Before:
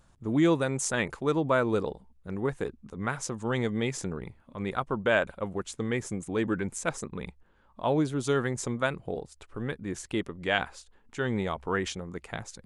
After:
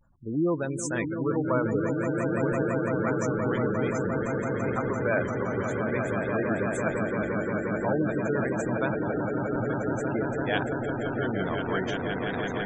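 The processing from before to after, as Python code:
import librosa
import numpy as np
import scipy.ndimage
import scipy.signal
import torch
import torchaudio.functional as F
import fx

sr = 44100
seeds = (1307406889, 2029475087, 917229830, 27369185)

y = fx.echo_swell(x, sr, ms=172, loudest=8, wet_db=-7.0)
y = fx.spec_gate(y, sr, threshold_db=-20, keep='strong')
y = fx.vibrato(y, sr, rate_hz=0.5, depth_cents=51.0)
y = y * 10.0 ** (-2.5 / 20.0)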